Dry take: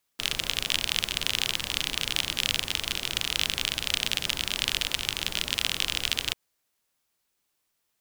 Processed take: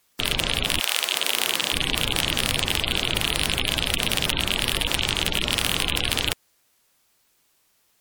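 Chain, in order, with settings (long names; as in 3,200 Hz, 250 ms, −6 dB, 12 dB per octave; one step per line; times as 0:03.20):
sine wavefolder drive 12 dB, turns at −3 dBFS
0:00.79–0:01.72: high-pass filter 750 Hz → 230 Hz 12 dB per octave
gate on every frequency bin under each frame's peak −20 dB strong
tape wow and flutter 26 cents
level −4 dB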